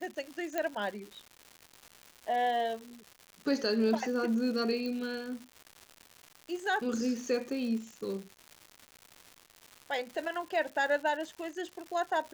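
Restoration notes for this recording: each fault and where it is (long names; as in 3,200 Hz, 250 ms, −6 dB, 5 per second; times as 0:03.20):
surface crackle 260 per second −39 dBFS
0:00.58: click −18 dBFS
0:04.86: click −26 dBFS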